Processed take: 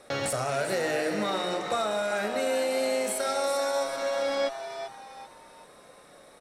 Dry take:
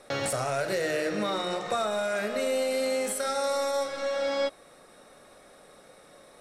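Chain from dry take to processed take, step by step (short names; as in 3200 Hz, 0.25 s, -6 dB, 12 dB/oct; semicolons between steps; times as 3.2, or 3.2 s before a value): added harmonics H 6 -43 dB, 8 -36 dB, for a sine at -16.5 dBFS; frequency-shifting echo 0.389 s, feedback 37%, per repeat +120 Hz, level -9.5 dB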